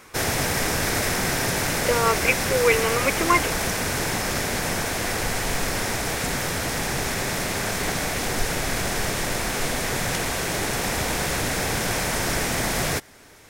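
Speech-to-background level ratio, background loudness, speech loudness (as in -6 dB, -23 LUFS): 1.0 dB, -24.0 LUFS, -23.0 LUFS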